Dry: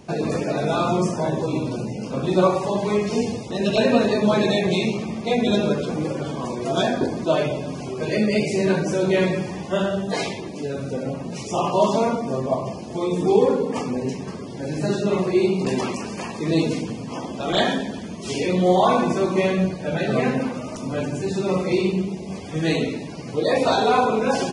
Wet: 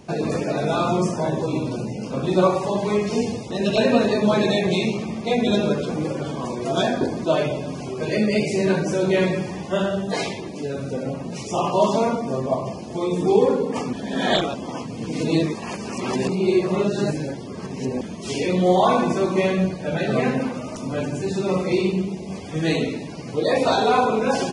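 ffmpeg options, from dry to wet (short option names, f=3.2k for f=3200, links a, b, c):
-filter_complex "[0:a]asplit=3[a][b][c];[a]atrim=end=13.932[d];[b]atrim=start=13.928:end=18.012,asetpts=PTS-STARTPTS,areverse[e];[c]atrim=start=18.008[f];[d][e]acrossfade=d=0.004:c1=hsin:c2=hsin[g];[g][f]acrossfade=d=0.004:c1=hsin:c2=hsin"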